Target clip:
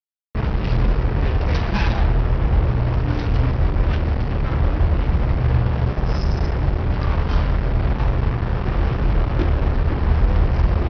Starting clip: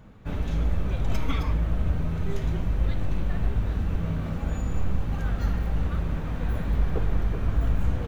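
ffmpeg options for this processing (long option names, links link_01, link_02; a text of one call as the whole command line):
ffmpeg -i in.wav -filter_complex "[0:a]highpass=frequency=45:poles=1,equalizer=frequency=110:width=1.8:gain=6.5,aresample=16000,acrusher=bits=4:mix=0:aa=0.5,aresample=44100,asplit=2[link_01][link_02];[link_02]adelay=31,volume=-12dB[link_03];[link_01][link_03]amix=inputs=2:normalize=0,asetrate=32667,aresample=44100,volume=7.5dB" out.wav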